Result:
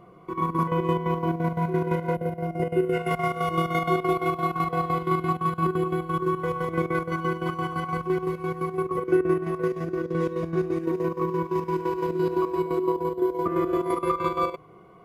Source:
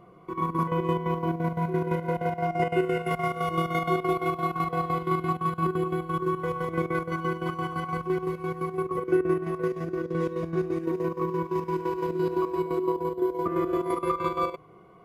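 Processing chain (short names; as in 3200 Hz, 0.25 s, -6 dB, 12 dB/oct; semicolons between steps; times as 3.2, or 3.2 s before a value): spectral gain 2.15–2.93, 660–8700 Hz -9 dB; gain +2 dB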